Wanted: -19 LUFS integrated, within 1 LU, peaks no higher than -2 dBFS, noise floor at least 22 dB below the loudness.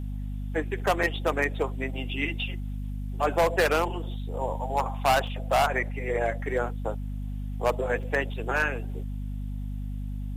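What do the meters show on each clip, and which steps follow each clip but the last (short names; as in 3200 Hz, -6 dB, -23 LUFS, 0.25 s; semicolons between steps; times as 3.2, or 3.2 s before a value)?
dropouts 3; longest dropout 3.7 ms; hum 50 Hz; harmonics up to 250 Hz; hum level -30 dBFS; loudness -28.5 LUFS; peak -12.0 dBFS; loudness target -19.0 LUFS
-> interpolate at 1.03/5.27/8.03, 3.7 ms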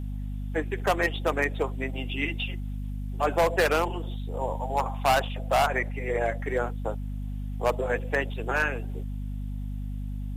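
dropouts 0; hum 50 Hz; harmonics up to 250 Hz; hum level -30 dBFS
-> de-hum 50 Hz, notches 5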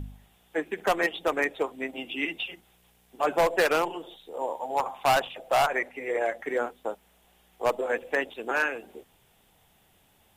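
hum none; loudness -28.0 LUFS; peak -13.5 dBFS; loudness target -19.0 LUFS
-> gain +9 dB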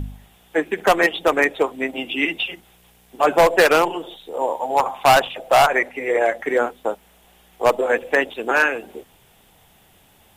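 loudness -19.0 LUFS; peak -4.5 dBFS; noise floor -55 dBFS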